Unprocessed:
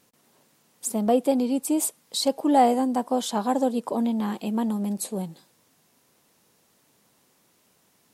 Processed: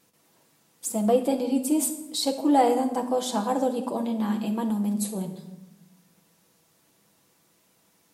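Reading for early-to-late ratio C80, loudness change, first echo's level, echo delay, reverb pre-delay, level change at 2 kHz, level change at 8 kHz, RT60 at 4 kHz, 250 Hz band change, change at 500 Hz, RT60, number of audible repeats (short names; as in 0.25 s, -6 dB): 12.5 dB, -1.0 dB, none, none, 6 ms, -0.5 dB, -0.5 dB, 0.60 s, -1.0 dB, 0.0 dB, 0.95 s, none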